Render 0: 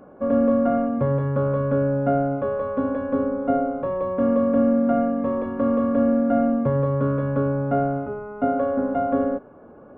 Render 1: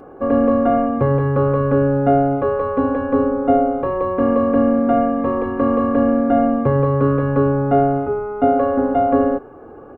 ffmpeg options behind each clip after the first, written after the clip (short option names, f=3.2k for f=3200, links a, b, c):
-af "aecho=1:1:2.5:0.57,volume=6.5dB"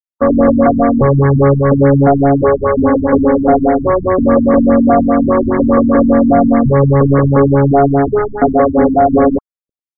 -af "acrusher=bits=3:mix=0:aa=0.5,apsyclip=13.5dB,afftfilt=real='re*lt(b*sr/1024,270*pow(2300/270,0.5+0.5*sin(2*PI*4.9*pts/sr)))':imag='im*lt(b*sr/1024,270*pow(2300/270,0.5+0.5*sin(2*PI*4.9*pts/sr)))':win_size=1024:overlap=0.75,volume=-3dB"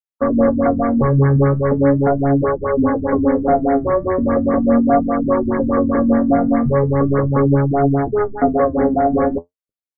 -af "flanger=delay=5.8:depth=9.3:regen=51:speed=0.39:shape=triangular,volume=-1.5dB"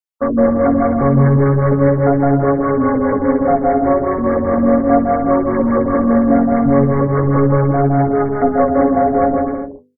-filter_complex "[0:a]bandreject=f=50:t=h:w=6,bandreject=f=100:t=h:w=6,bandreject=f=150:t=h:w=6,bandreject=f=200:t=h:w=6,bandreject=f=250:t=h:w=6,bandreject=f=300:t=h:w=6,bandreject=f=350:t=h:w=6,bandreject=f=400:t=h:w=6,bandreject=f=450:t=h:w=6,bandreject=f=500:t=h:w=6,asplit=2[a][b];[b]aecho=0:1:160|264|331.6|375.5|404.1:0.631|0.398|0.251|0.158|0.1[c];[a][c]amix=inputs=2:normalize=0"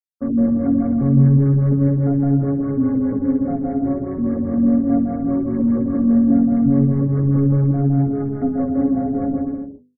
-af "equalizer=f=125:t=o:w=1:g=7,equalizer=f=250:t=o:w=1:g=8,equalizer=f=500:t=o:w=1:g=-5,equalizer=f=1k:t=o:w=1:g=-11,equalizer=f=2k:t=o:w=1:g=-9,volume=-8.5dB"